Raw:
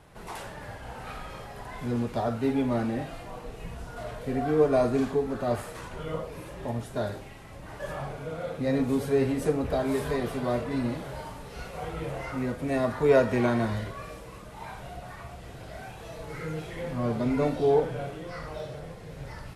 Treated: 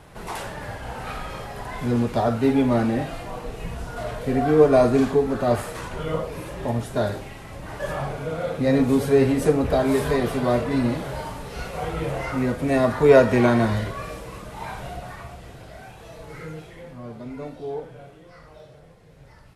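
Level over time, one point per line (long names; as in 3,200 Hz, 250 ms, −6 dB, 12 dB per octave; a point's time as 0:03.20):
0:14.87 +7 dB
0:15.76 −0.5 dB
0:16.42 −0.5 dB
0:17.03 −9 dB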